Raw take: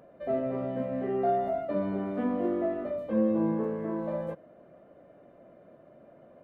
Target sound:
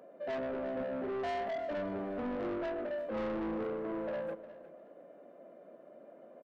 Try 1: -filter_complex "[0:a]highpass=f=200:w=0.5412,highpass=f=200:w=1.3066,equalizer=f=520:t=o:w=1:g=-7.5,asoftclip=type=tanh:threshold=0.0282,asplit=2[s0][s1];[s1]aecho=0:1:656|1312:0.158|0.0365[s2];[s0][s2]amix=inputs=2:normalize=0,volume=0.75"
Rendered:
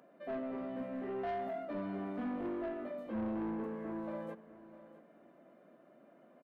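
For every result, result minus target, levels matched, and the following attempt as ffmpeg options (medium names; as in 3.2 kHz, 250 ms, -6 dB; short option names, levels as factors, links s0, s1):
echo 300 ms late; 500 Hz band -2.5 dB
-filter_complex "[0:a]highpass=f=200:w=0.5412,highpass=f=200:w=1.3066,equalizer=f=520:t=o:w=1:g=-7.5,asoftclip=type=tanh:threshold=0.0282,asplit=2[s0][s1];[s1]aecho=0:1:356|712:0.158|0.0365[s2];[s0][s2]amix=inputs=2:normalize=0,volume=0.75"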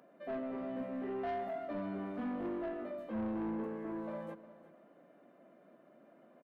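500 Hz band -2.5 dB
-filter_complex "[0:a]highpass=f=200:w=0.5412,highpass=f=200:w=1.3066,equalizer=f=520:t=o:w=1:g=4,asoftclip=type=tanh:threshold=0.0282,asplit=2[s0][s1];[s1]aecho=0:1:356|712:0.158|0.0365[s2];[s0][s2]amix=inputs=2:normalize=0,volume=0.75"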